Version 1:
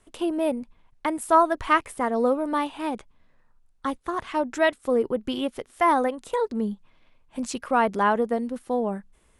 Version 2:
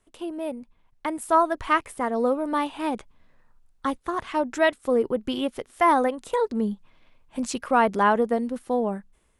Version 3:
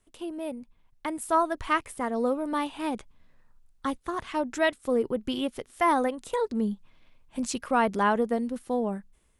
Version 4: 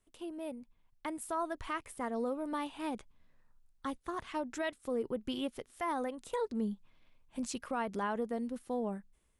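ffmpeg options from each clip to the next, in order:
-af "dynaudnorm=f=590:g=3:m=11.5dB,volume=-7dB"
-af "equalizer=f=820:w=0.36:g=-4.5"
-af "alimiter=limit=-19dB:level=0:latency=1:release=100,volume=-7dB"

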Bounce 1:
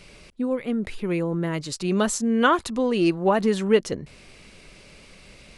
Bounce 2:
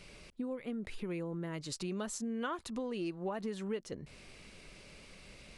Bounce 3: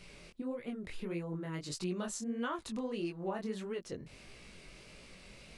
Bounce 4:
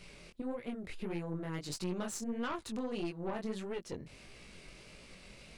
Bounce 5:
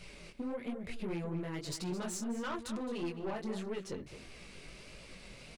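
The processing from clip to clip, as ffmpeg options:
-af "acompressor=threshold=-31dB:ratio=4,volume=-6dB"
-af "flanger=delay=16.5:depth=7.6:speed=1.6,volume=3dB"
-af "aeval=exprs='(tanh(50.1*val(0)+0.6)-tanh(0.6))/50.1':c=same,volume=3dB"
-filter_complex "[0:a]asoftclip=type=tanh:threshold=-33.5dB,flanger=delay=1.2:depth=6.8:regen=-41:speed=1.2:shape=triangular,asplit=2[a][b];[b]adelay=215.7,volume=-11dB,highshelf=f=4k:g=-4.85[c];[a][c]amix=inputs=2:normalize=0,volume=6dB"

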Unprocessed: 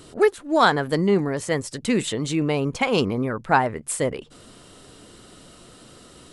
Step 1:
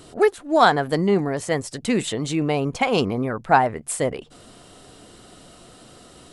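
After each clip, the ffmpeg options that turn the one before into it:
-af "equalizer=f=720:t=o:w=0.32:g=6.5"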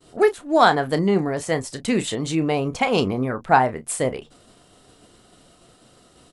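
-filter_complex "[0:a]asplit=2[a][b];[b]adelay=31,volume=-12dB[c];[a][c]amix=inputs=2:normalize=0,agate=range=-33dB:threshold=-40dB:ratio=3:detection=peak"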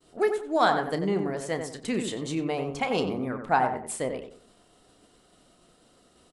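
-filter_complex "[0:a]equalizer=f=110:w=2.3:g=-7,asplit=2[a][b];[b]adelay=92,lowpass=f=1.6k:p=1,volume=-5.5dB,asplit=2[c][d];[d]adelay=92,lowpass=f=1.6k:p=1,volume=0.32,asplit=2[e][f];[f]adelay=92,lowpass=f=1.6k:p=1,volume=0.32,asplit=2[g][h];[h]adelay=92,lowpass=f=1.6k:p=1,volume=0.32[i];[a][c][e][g][i]amix=inputs=5:normalize=0,volume=-7.5dB"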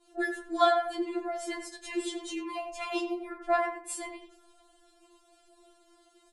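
-af "afftfilt=real='re*4*eq(mod(b,16),0)':imag='im*4*eq(mod(b,16),0)':win_size=2048:overlap=0.75"

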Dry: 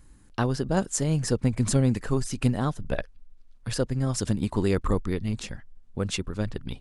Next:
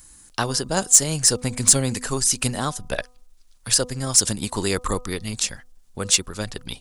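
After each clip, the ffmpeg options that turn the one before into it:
-filter_complex "[0:a]bass=f=250:g=-2,treble=f=4k:g=14,bandreject=f=248.8:t=h:w=4,bandreject=f=497.6:t=h:w=4,bandreject=f=746.4:t=h:w=4,bandreject=f=995.2:t=h:w=4,bandreject=f=1.244k:t=h:w=4,acrossover=split=620[a][b];[b]acontrast=82[c];[a][c]amix=inputs=2:normalize=0,volume=-1dB"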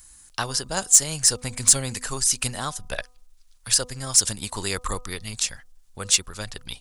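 -af "equalizer=f=270:w=0.51:g=-8.5,volume=-1dB"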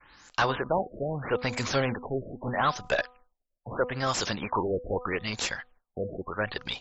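-filter_complex "[0:a]asplit=2[a][b];[b]highpass=f=720:p=1,volume=30dB,asoftclip=type=tanh:threshold=-1.5dB[c];[a][c]amix=inputs=2:normalize=0,lowpass=f=1.3k:p=1,volume=-6dB,agate=range=-33dB:threshold=-41dB:ratio=3:detection=peak,afftfilt=real='re*lt(b*sr/1024,670*pow(7800/670,0.5+0.5*sin(2*PI*0.78*pts/sr)))':imag='im*lt(b*sr/1024,670*pow(7800/670,0.5+0.5*sin(2*PI*0.78*pts/sr)))':win_size=1024:overlap=0.75,volume=-8.5dB"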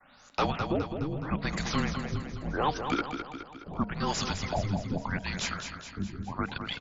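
-af "aecho=1:1:209|418|627|836|1045|1254|1463:0.422|0.228|0.123|0.0664|0.0359|0.0194|0.0105,afreqshift=-290,volume=-2.5dB"

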